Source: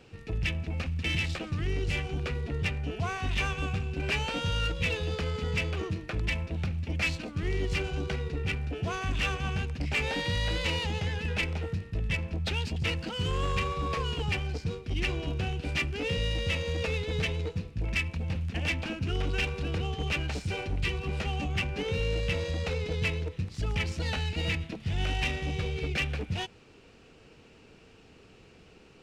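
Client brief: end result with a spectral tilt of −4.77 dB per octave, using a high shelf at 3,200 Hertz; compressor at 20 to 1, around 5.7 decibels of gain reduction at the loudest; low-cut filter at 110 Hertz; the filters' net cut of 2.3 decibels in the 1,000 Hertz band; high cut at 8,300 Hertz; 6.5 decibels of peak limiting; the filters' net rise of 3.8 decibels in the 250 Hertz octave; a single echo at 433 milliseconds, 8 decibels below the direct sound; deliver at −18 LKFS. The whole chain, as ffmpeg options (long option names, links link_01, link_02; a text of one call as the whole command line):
ffmpeg -i in.wav -af "highpass=110,lowpass=8300,equalizer=frequency=250:width_type=o:gain=6.5,equalizer=frequency=1000:width_type=o:gain=-3,highshelf=frequency=3200:gain=-3.5,acompressor=threshold=-32dB:ratio=20,alimiter=level_in=5dB:limit=-24dB:level=0:latency=1,volume=-5dB,aecho=1:1:433:0.398,volume=20dB" out.wav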